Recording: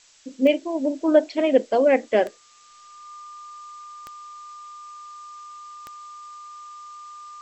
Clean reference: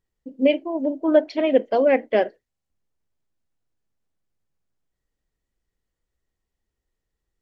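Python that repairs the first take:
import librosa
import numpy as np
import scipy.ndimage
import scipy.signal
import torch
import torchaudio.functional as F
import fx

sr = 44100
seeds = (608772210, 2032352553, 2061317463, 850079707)

y = fx.fix_declick_ar(x, sr, threshold=10.0)
y = fx.notch(y, sr, hz=1200.0, q=30.0)
y = fx.noise_reduce(y, sr, print_start_s=2.31, print_end_s=2.81, reduce_db=30.0)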